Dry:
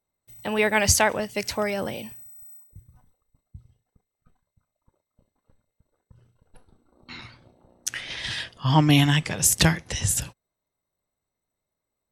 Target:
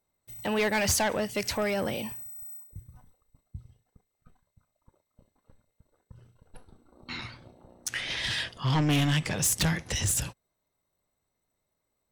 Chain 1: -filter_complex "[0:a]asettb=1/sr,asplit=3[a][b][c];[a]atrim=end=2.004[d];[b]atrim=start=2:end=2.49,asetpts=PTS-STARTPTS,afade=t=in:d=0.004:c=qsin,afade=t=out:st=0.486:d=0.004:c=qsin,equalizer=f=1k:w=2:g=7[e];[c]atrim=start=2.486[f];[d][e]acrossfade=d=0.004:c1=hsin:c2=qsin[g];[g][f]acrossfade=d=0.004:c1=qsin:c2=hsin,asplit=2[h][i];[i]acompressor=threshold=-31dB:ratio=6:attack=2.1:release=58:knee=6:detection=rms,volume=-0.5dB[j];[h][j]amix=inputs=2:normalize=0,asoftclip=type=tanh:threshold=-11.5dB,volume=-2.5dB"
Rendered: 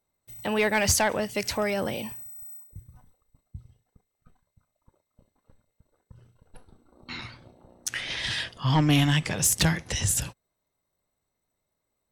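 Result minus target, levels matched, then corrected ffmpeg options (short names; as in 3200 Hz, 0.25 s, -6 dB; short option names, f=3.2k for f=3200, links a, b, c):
soft clip: distortion -7 dB
-filter_complex "[0:a]asettb=1/sr,asplit=3[a][b][c];[a]atrim=end=2.004[d];[b]atrim=start=2:end=2.49,asetpts=PTS-STARTPTS,afade=t=in:d=0.004:c=qsin,afade=t=out:st=0.486:d=0.004:c=qsin,equalizer=f=1k:w=2:g=7[e];[c]atrim=start=2.486[f];[d][e]acrossfade=d=0.004:c1=hsin:c2=qsin[g];[g][f]acrossfade=d=0.004:c1=qsin:c2=hsin,asplit=2[h][i];[i]acompressor=threshold=-31dB:ratio=6:attack=2.1:release=58:knee=6:detection=rms,volume=-0.5dB[j];[h][j]amix=inputs=2:normalize=0,asoftclip=type=tanh:threshold=-18.5dB,volume=-2.5dB"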